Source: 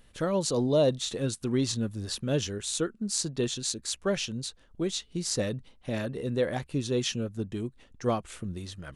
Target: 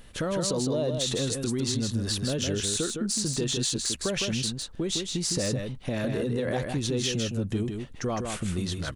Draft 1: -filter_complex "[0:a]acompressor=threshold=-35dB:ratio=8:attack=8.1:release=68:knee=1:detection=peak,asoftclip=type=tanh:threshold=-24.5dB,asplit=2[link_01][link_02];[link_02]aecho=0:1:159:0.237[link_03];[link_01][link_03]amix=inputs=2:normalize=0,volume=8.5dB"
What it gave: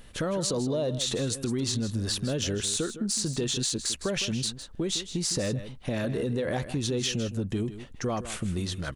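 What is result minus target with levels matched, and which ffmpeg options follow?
echo-to-direct −7.5 dB
-filter_complex "[0:a]acompressor=threshold=-35dB:ratio=8:attack=8.1:release=68:knee=1:detection=peak,asoftclip=type=tanh:threshold=-24.5dB,asplit=2[link_01][link_02];[link_02]aecho=0:1:159:0.562[link_03];[link_01][link_03]amix=inputs=2:normalize=0,volume=8.5dB"

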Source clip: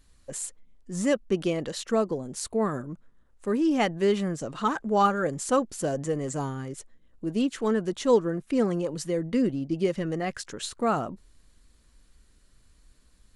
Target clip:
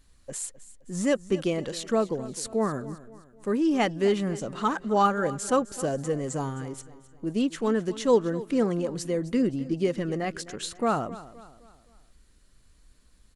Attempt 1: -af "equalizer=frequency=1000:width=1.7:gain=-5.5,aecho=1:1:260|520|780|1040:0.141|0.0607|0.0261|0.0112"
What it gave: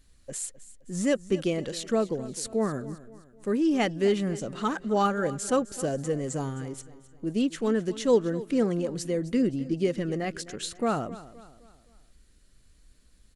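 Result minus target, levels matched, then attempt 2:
1,000 Hz band −3.0 dB
-af "aecho=1:1:260|520|780|1040:0.141|0.0607|0.0261|0.0112"

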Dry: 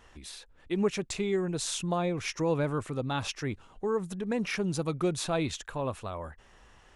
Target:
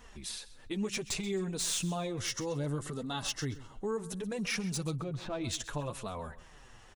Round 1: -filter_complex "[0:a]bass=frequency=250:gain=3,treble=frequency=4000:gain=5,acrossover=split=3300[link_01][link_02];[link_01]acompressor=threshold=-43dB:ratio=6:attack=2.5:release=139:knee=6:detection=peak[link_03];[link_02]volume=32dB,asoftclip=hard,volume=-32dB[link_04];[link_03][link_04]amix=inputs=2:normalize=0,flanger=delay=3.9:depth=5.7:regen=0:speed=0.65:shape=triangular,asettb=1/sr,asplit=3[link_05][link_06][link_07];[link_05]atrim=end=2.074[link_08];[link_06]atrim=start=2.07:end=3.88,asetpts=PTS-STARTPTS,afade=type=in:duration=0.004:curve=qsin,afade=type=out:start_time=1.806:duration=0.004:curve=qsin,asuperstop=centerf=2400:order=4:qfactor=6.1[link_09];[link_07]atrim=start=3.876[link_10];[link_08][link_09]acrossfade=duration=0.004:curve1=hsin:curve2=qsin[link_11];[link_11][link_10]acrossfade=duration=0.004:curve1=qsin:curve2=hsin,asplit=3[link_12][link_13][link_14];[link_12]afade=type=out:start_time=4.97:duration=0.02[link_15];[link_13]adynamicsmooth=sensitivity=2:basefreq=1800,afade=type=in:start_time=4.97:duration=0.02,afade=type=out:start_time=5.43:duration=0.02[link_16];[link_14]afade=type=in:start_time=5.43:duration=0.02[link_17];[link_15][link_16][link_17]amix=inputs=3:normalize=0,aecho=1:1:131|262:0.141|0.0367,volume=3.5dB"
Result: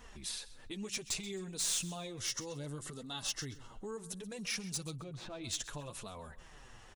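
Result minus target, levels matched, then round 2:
downward compressor: peak gain reduction +9 dB
-filter_complex "[0:a]bass=frequency=250:gain=3,treble=frequency=4000:gain=5,acrossover=split=3300[link_01][link_02];[link_01]acompressor=threshold=-32.5dB:ratio=6:attack=2.5:release=139:knee=6:detection=peak[link_03];[link_02]volume=32dB,asoftclip=hard,volume=-32dB[link_04];[link_03][link_04]amix=inputs=2:normalize=0,flanger=delay=3.9:depth=5.7:regen=0:speed=0.65:shape=triangular,asettb=1/sr,asplit=3[link_05][link_06][link_07];[link_05]atrim=end=2.074[link_08];[link_06]atrim=start=2.07:end=3.88,asetpts=PTS-STARTPTS,afade=type=in:duration=0.004:curve=qsin,afade=type=out:start_time=1.806:duration=0.004:curve=qsin,asuperstop=centerf=2400:order=4:qfactor=6.1[link_09];[link_07]atrim=start=3.876[link_10];[link_08][link_09]acrossfade=duration=0.004:curve1=hsin:curve2=qsin[link_11];[link_11][link_10]acrossfade=duration=0.004:curve1=qsin:curve2=hsin,asplit=3[link_12][link_13][link_14];[link_12]afade=type=out:start_time=4.97:duration=0.02[link_15];[link_13]adynamicsmooth=sensitivity=2:basefreq=1800,afade=type=in:start_time=4.97:duration=0.02,afade=type=out:start_time=5.43:duration=0.02[link_16];[link_14]afade=type=in:start_time=5.43:duration=0.02[link_17];[link_15][link_16][link_17]amix=inputs=3:normalize=0,aecho=1:1:131|262:0.141|0.0367,volume=3.5dB"

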